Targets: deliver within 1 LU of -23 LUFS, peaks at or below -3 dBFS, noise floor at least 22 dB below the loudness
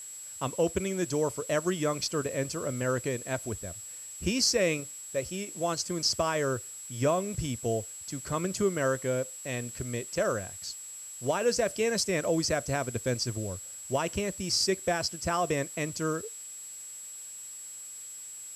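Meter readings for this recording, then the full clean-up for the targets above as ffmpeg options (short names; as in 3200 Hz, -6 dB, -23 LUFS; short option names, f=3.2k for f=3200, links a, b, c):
steady tone 7700 Hz; tone level -41 dBFS; noise floor -44 dBFS; noise floor target -53 dBFS; loudness -31.0 LUFS; peak -12.5 dBFS; loudness target -23.0 LUFS
-> -af "bandreject=f=7.7k:w=30"
-af "afftdn=nr=9:nf=-44"
-af "volume=8dB"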